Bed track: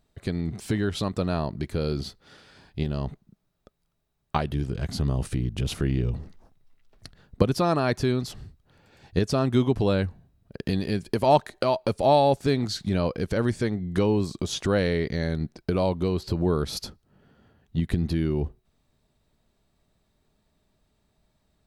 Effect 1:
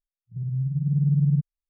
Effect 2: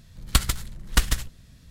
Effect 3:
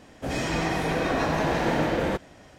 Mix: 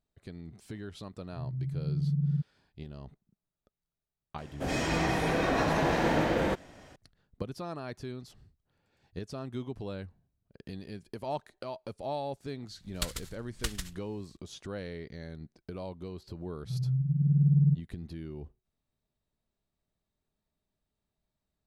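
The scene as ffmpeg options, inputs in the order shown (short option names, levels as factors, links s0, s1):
-filter_complex "[1:a]asplit=2[s0][s1];[0:a]volume=0.158[s2];[2:a]equalizer=f=4900:w=0.31:g=6.5[s3];[s0]atrim=end=1.69,asetpts=PTS-STARTPTS,volume=0.398,afade=t=in:d=0.004:c=hsin,afade=t=out:st=1.686:d=0.004:c=hsin,adelay=1010[s4];[3:a]atrim=end=2.58,asetpts=PTS-STARTPTS,volume=0.75,afade=t=in:d=0.004:c=hsin,afade=t=out:st=2.576:d=0.004:c=hsin,adelay=4380[s5];[s3]atrim=end=1.7,asetpts=PTS-STARTPTS,volume=0.15,afade=t=in:d=0.004:c=hsin,afade=t=out:st=1.696:d=0.004:c=hsin,adelay=12670[s6];[s1]atrim=end=1.69,asetpts=PTS-STARTPTS,volume=0.75,afade=t=in:d=0.004:c=hsin,afade=t=out:st=1.686:d=0.004:c=hsin,adelay=16340[s7];[s2][s4][s5][s6][s7]amix=inputs=5:normalize=0"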